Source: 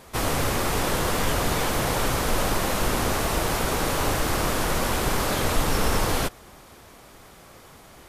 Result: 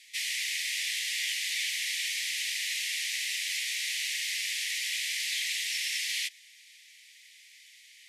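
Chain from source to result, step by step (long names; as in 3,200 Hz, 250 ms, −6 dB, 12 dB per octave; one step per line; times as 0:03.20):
Butterworth high-pass 1,900 Hz 96 dB per octave
high-frequency loss of the air 52 metres
level +2.5 dB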